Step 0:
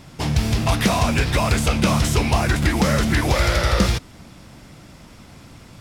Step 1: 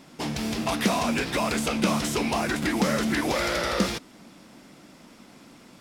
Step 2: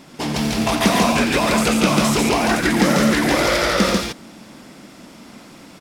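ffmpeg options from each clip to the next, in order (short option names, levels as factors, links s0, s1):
-af "lowshelf=f=150:t=q:w=1.5:g=-14,volume=0.562"
-af "aecho=1:1:87.46|142.9:0.398|0.794,volume=2"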